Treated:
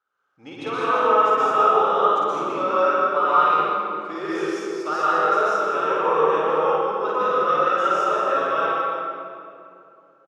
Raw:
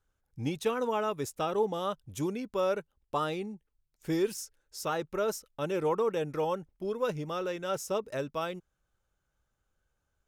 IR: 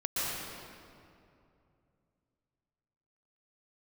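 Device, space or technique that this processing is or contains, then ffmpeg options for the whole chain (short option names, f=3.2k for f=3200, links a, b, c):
station announcement: -filter_complex "[0:a]highpass=430,lowpass=3.9k,equalizer=f=1.3k:t=o:w=0.43:g=12,aecho=1:1:52.48|201.2:0.794|0.501[a];[1:a]atrim=start_sample=2205[b];[a][b]afir=irnorm=-1:irlink=0"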